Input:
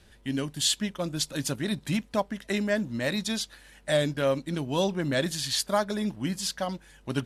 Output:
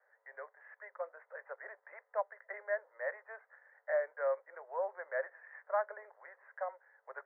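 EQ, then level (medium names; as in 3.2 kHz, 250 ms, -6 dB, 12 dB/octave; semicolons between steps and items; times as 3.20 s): steep high-pass 480 Hz 72 dB/octave; steep low-pass 2 kHz 96 dB/octave; -7.0 dB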